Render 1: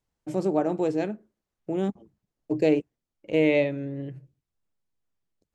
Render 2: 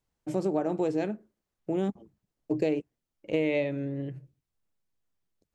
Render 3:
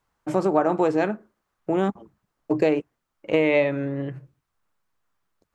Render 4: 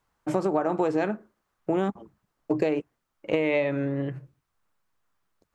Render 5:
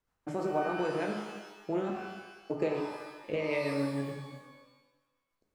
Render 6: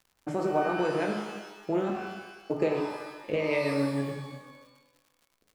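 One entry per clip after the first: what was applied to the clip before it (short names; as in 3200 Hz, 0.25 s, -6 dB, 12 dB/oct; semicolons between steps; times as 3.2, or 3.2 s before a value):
compressor, threshold -23 dBFS, peak gain reduction 7 dB
bell 1200 Hz +13 dB 1.5 oct; gain +4 dB
compressor, threshold -20 dBFS, peak gain reduction 6.5 dB
rotary speaker horn 6.7 Hz; shimmer reverb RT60 1.1 s, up +12 st, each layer -8 dB, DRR 1.5 dB; gain -6.5 dB
crackle 140/s -54 dBFS; gain +4 dB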